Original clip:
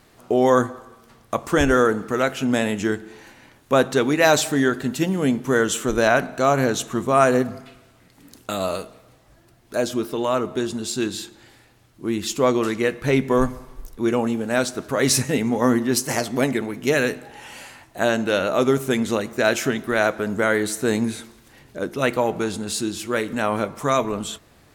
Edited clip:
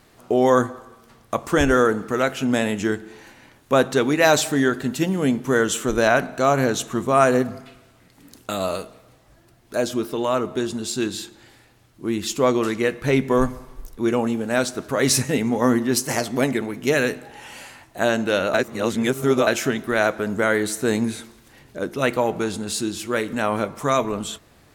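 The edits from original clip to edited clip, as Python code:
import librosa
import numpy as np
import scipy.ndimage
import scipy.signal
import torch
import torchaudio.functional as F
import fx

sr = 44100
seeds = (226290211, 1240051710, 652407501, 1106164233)

y = fx.edit(x, sr, fx.reverse_span(start_s=18.54, length_s=0.93), tone=tone)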